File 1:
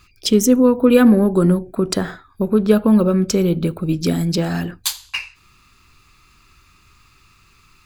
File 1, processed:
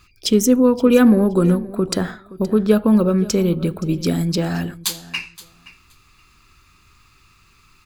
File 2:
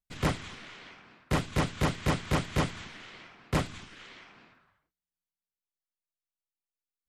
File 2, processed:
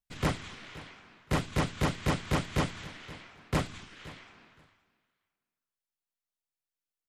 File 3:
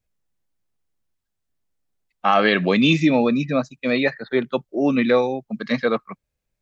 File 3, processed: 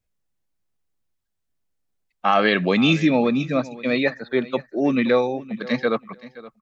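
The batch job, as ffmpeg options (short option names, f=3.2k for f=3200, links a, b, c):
-af "aecho=1:1:522|1044:0.119|0.019,volume=-1dB"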